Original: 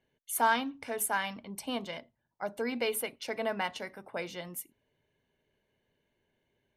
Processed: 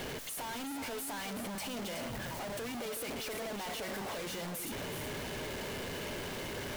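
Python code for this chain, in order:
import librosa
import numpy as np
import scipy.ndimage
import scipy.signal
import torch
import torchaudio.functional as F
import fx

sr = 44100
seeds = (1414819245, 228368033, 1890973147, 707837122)

y = np.sign(x) * np.sqrt(np.mean(np.square(x)))
y = fx.peak_eq(y, sr, hz=490.0, db=2.0, octaves=1.8)
y = y + 10.0 ** (-8.0 / 20.0) * np.pad(y, (int(374 * sr / 1000.0), 0))[:len(y)]
y = y * 10.0 ** (-4.5 / 20.0)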